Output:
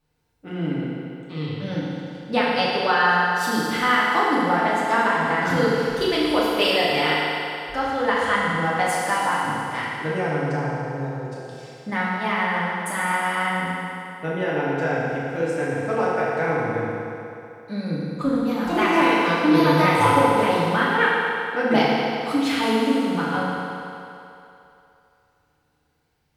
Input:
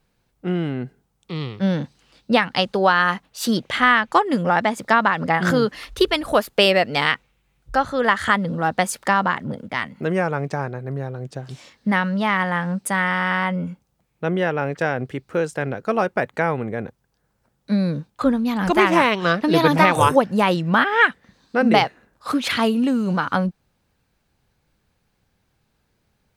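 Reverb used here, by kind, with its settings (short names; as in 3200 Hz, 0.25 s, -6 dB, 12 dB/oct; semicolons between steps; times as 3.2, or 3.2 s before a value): FDN reverb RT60 2.9 s, low-frequency decay 0.7×, high-frequency decay 0.9×, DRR -7.5 dB; gain -9.5 dB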